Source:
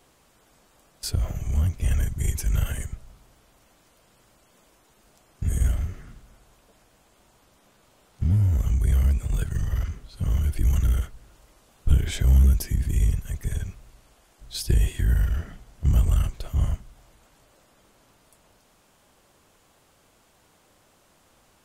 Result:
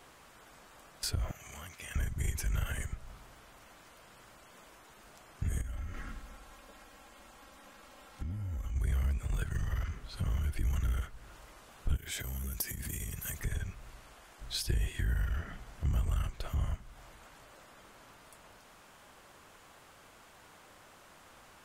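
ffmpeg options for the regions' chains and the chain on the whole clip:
ffmpeg -i in.wav -filter_complex "[0:a]asettb=1/sr,asplit=3[link_01][link_02][link_03];[link_01]atrim=end=1.314[link_04];[link_02]atrim=start=1.31:end=1.96,asetpts=PTS-STARTPTS,afade=type=in:duration=0.004:curve=qsin,afade=type=out:start_time=0.646:duration=0.004:curve=qsin,highpass=frequency=1300:poles=1,acompressor=threshold=-45dB:ratio=4:attack=3.2:release=140:knee=1:detection=peak[link_05];[link_03]atrim=start=1.956[link_06];[link_04][link_05]acrossfade=duration=0.004:curve1=hsin:curve2=qsin[link_07];[link_07][link_06]acrossfade=duration=0.004:curve1=qsin:curve2=hsin,asettb=1/sr,asplit=3[link_08][link_09][link_10];[link_08]atrim=end=5.614[link_11];[link_09]atrim=start=5.61:end=8.76,asetpts=PTS-STARTPTS,afade=type=in:duration=0.004:curve=qsin,afade=type=out:start_time=3.146:duration=0.004:curve=qsin,acompressor=threshold=-36dB:ratio=3:attack=3.2:release=140:knee=1:detection=peak,aecho=1:1:3.7:0.57,atrim=end_sample=138915[link_12];[link_10]atrim=start=8.756[link_13];[link_11][link_12]acrossfade=duration=0.004:curve1=hsin:curve2=qsin[link_14];[link_14][link_13]acrossfade=duration=0.004:curve1=qsin:curve2=hsin,asettb=1/sr,asplit=3[link_15][link_16][link_17];[link_15]atrim=end=11.964[link_18];[link_16]atrim=start=11.96:end=13.4,asetpts=PTS-STARTPTS,afade=type=in:duration=0.004:curve=qsin,afade=type=out:start_time=1.436:duration=0.004:curve=qsin,highpass=frequency=140:poles=1,acompressor=threshold=-34dB:ratio=5:attack=3.2:release=140:knee=1:detection=peak,aemphasis=mode=production:type=50fm[link_19];[link_17]atrim=start=13.396[link_20];[link_18][link_19]acrossfade=duration=0.004:curve1=hsin:curve2=qsin[link_21];[link_21][link_20]acrossfade=duration=0.004:curve1=qsin:curve2=hsin,equalizer=frequency=1500:width=0.61:gain=7.5,acompressor=threshold=-37dB:ratio=2" out.wav

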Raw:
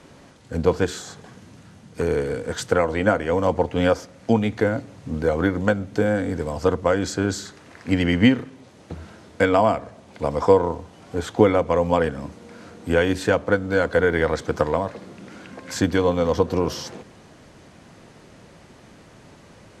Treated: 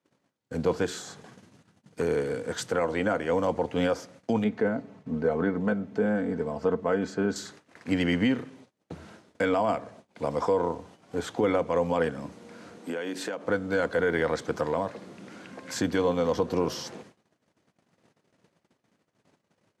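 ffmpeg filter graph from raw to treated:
ffmpeg -i in.wav -filter_complex "[0:a]asettb=1/sr,asplit=3[link_01][link_02][link_03];[link_01]atrim=end=4.444[link_04];[link_02]atrim=start=4.44:end=7.36,asetpts=PTS-STARTPTS,afade=type=in:duration=0.004:curve=qsin,afade=type=out:start_time=2.916:duration=0.004:curve=qsin,lowpass=frequency=1400:poles=1,aecho=1:1:4.6:0.54,atrim=end_sample=128772[link_05];[link_03]atrim=start=7.356[link_06];[link_04][link_05]acrossfade=duration=0.004:curve1=hsin:curve2=qsin[link_07];[link_07][link_06]acrossfade=duration=0.004:curve1=qsin:curve2=hsin,asettb=1/sr,asplit=3[link_08][link_09][link_10];[link_08]atrim=end=12.784[link_11];[link_09]atrim=start=12.78:end=13.45,asetpts=PTS-STARTPTS,afade=type=in:duration=0.004:curve=qsin,afade=type=out:start_time=0.666:duration=0.004:curve=qsin,highpass=frequency=190:width=0.5412,highpass=frequency=190:width=1.3066,acompressor=threshold=-24dB:ratio=10:attack=3.2:release=140:knee=1:detection=peak[link_12];[link_10]atrim=start=13.446[link_13];[link_11][link_12]acrossfade=duration=0.004:curve1=hsin:curve2=qsin[link_14];[link_14][link_13]acrossfade=duration=0.004:curve1=qsin:curve2=hsin,agate=range=-29dB:threshold=-44dB:ratio=16:detection=peak,highpass=130,alimiter=limit=-11.5dB:level=0:latency=1:release=22,volume=-4dB" out.wav

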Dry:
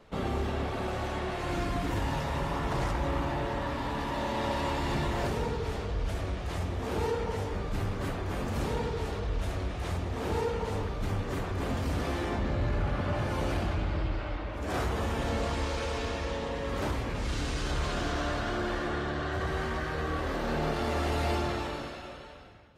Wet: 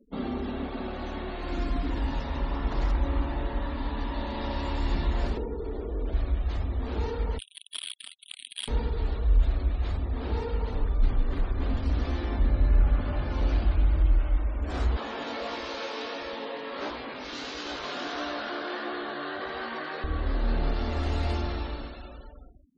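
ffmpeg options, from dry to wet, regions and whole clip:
ffmpeg -i in.wav -filter_complex "[0:a]asettb=1/sr,asplit=3[link_01][link_02][link_03];[link_01]atrim=end=5.374[link_04];[link_02]atrim=start=5.37:end=6.13,asetpts=PTS-STARTPTS,afade=type=in:duration=0.004:curve=qsin,afade=type=out:start_time=0.756:duration=0.004:curve=qsin,equalizer=frequency=370:width_type=o:width=1:gain=13,acrossover=split=160|860[link_05][link_06][link_07];[link_05]acompressor=threshold=-41dB:ratio=4[link_08];[link_06]acompressor=threshold=-31dB:ratio=4[link_09];[link_07]acompressor=threshold=-46dB:ratio=4[link_10];[link_08][link_09][link_10]amix=inputs=3:normalize=0[link_11];[link_03]atrim=start=6.126[link_12];[link_04][link_11]acrossfade=duration=0.004:curve1=hsin:curve2=qsin[link_13];[link_13][link_12]acrossfade=duration=0.004:curve1=qsin:curve2=hsin,asettb=1/sr,asplit=3[link_14][link_15][link_16];[link_14]atrim=end=7.384[link_17];[link_15]atrim=start=7.38:end=8.68,asetpts=PTS-STARTPTS,afade=type=in:duration=0.004:curve=qsin,afade=type=out:start_time=1.296:duration=0.004:curve=qsin,lowpass=frequency=2900:width_type=q:width=0.5098,lowpass=frequency=2900:width_type=q:width=0.6013,lowpass=frequency=2900:width_type=q:width=0.9,lowpass=frequency=2900:width_type=q:width=2.563,afreqshift=-3400,acrusher=bits=3:mix=0:aa=0.5[link_18];[link_16]atrim=start=8.676[link_19];[link_17][link_18]acrossfade=duration=0.004:curve1=hsin:curve2=qsin[link_20];[link_20][link_19]acrossfade=duration=0.004:curve1=qsin:curve2=hsin,asettb=1/sr,asplit=3[link_21][link_22][link_23];[link_21]atrim=end=14.964[link_24];[link_22]atrim=start=14.96:end=20.04,asetpts=PTS-STARTPTS,afade=type=in:duration=0.004:curve=qsin,afade=type=out:start_time=5.076:duration=0.004:curve=qsin,acontrast=80,flanger=delay=16.5:depth=4.3:speed=1.5,highpass=380,lowpass=6100[link_25];[link_23]atrim=start=20.036[link_26];[link_24][link_25]acrossfade=duration=0.004:curve1=hsin:curve2=qsin[link_27];[link_27][link_26]acrossfade=duration=0.004:curve1=qsin:curve2=hsin,equalizer=frequency=100:width_type=o:width=0.67:gain=-10,equalizer=frequency=250:width_type=o:width=0.67:gain=12,equalizer=frequency=4000:width_type=o:width=0.67:gain=4,equalizer=frequency=10000:width_type=o:width=0.67:gain=3,afftfilt=real='re*gte(hypot(re,im),0.00794)':imag='im*gte(hypot(re,im),0.00794)':win_size=1024:overlap=0.75,asubboost=boost=12:cutoff=59,volume=-4dB" out.wav

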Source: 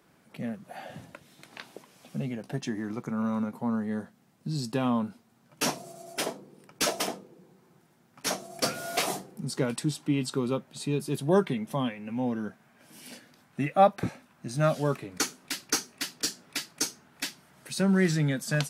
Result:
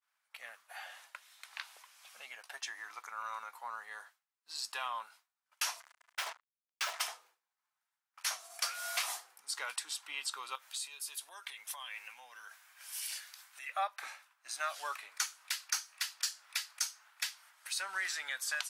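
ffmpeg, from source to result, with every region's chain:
ffmpeg -i in.wav -filter_complex "[0:a]asettb=1/sr,asplit=3[link_01][link_02][link_03];[link_01]atrim=end=5.804[link_04];[link_02]atrim=start=5.8:end=7.01,asetpts=PTS-STARTPTS,afade=type=in:duration=0.004:curve=qsin,afade=type=out:start_time=1.206:duration=0.004:curve=qsin,aemphasis=mode=reproduction:type=75fm,acrusher=bits=5:mix=0:aa=0.5[link_05];[link_03]atrim=start=7.006[link_06];[link_04][link_05]acrossfade=duration=0.004:curve1=hsin:curve2=qsin[link_07];[link_07][link_06]acrossfade=duration=0.004:curve1=qsin:curve2=hsin,asettb=1/sr,asplit=3[link_08][link_09][link_10];[link_08]atrim=end=10.554[link_11];[link_09]atrim=start=10.55:end=13.69,asetpts=PTS-STARTPTS,afade=type=in:duration=0.004:curve=qsin,afade=type=out:start_time=3.136:duration=0.004:curve=qsin,equalizer=frequency=14000:width_type=o:width=2.7:gain=12,acompressor=threshold=-36dB:ratio=8:attack=3.2:release=140:knee=1:detection=peak[link_12];[link_10]atrim=start=13.686[link_13];[link_11][link_12]acrossfade=duration=0.004:curve1=hsin:curve2=qsin[link_14];[link_14][link_13]acrossfade=duration=0.004:curve1=qsin:curve2=hsin,highpass=frequency=1000:width=0.5412,highpass=frequency=1000:width=1.3066,agate=range=-33dB:threshold=-57dB:ratio=3:detection=peak,acompressor=threshold=-35dB:ratio=2.5,volume=1dB" out.wav

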